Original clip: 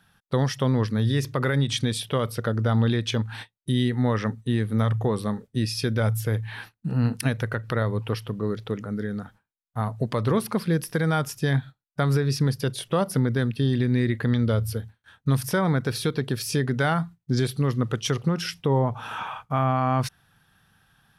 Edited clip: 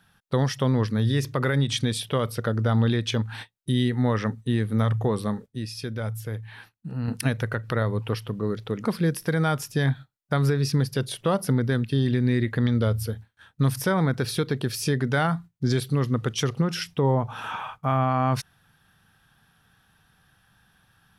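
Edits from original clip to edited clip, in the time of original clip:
5.46–7.08 gain -7 dB
8.85–10.52 cut

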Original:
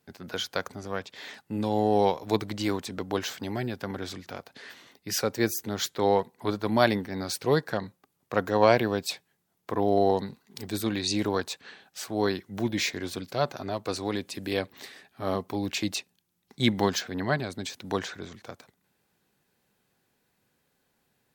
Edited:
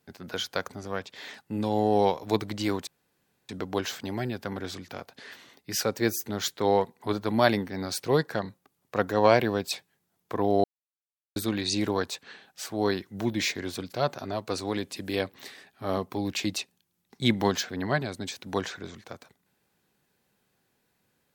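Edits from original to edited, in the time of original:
2.87 insert room tone 0.62 s
10.02–10.74 mute

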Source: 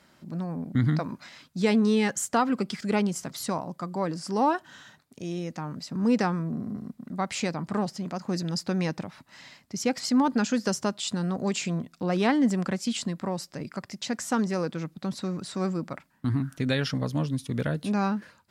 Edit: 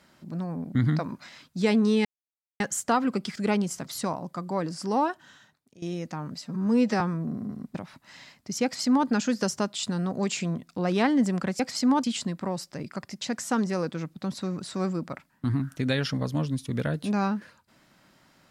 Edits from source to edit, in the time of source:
2.05 insert silence 0.55 s
4.29–5.27 fade out, to -16.5 dB
5.87–6.26 stretch 1.5×
7–8.99 cut
9.88–10.32 copy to 12.84

